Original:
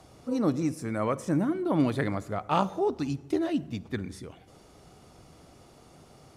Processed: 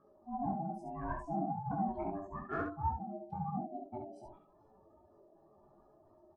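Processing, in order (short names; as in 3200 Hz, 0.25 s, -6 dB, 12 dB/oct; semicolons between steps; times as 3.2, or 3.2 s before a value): spectral contrast raised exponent 2.7; added harmonics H 2 -24 dB, 7 -40 dB, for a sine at -14 dBFS; chorus voices 4, 1.1 Hz, delay 18 ms, depth 4 ms; ring modulator 490 Hz; on a send: early reflections 21 ms -6.5 dB, 68 ms -4.5 dB; on the sum: gain -5.5 dB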